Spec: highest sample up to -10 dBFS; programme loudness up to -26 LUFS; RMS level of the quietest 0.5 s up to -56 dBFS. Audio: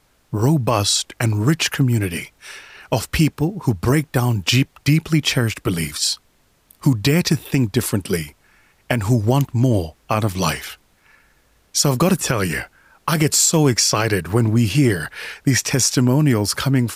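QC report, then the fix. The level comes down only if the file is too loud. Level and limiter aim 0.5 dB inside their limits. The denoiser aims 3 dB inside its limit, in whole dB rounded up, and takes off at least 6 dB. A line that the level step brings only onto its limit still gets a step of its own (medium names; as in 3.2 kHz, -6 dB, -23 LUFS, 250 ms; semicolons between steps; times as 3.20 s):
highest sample -4.5 dBFS: fail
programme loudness -18.5 LUFS: fail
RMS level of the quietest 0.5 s -59 dBFS: pass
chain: trim -8 dB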